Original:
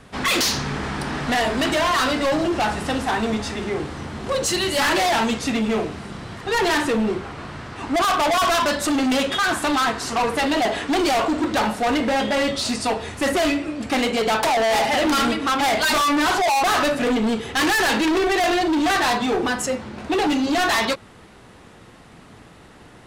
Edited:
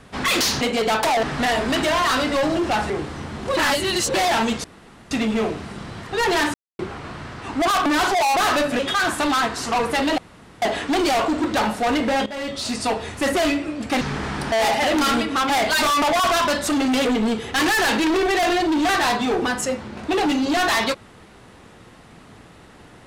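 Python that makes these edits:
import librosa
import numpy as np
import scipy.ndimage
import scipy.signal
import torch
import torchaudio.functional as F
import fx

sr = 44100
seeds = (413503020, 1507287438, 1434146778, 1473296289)

y = fx.edit(x, sr, fx.swap(start_s=0.61, length_s=0.51, other_s=14.01, other_length_s=0.62),
    fx.cut(start_s=2.79, length_s=0.92),
    fx.reverse_span(start_s=4.38, length_s=0.57),
    fx.insert_room_tone(at_s=5.45, length_s=0.47),
    fx.silence(start_s=6.88, length_s=0.25),
    fx.swap(start_s=8.2, length_s=1.03, other_s=16.13, other_length_s=0.93),
    fx.insert_room_tone(at_s=10.62, length_s=0.44),
    fx.fade_in_from(start_s=12.26, length_s=0.59, floor_db=-14.0), tone=tone)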